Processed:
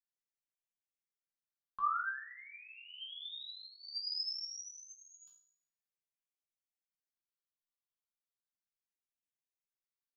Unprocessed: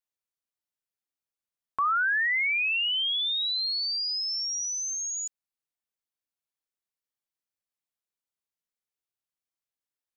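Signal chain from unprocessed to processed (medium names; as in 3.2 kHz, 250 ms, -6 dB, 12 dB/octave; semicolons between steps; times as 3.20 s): chord resonator C3 sus4, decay 0.51 s; phase shifter stages 6, 0.35 Hz, lowest notch 510–1200 Hz; trim +8.5 dB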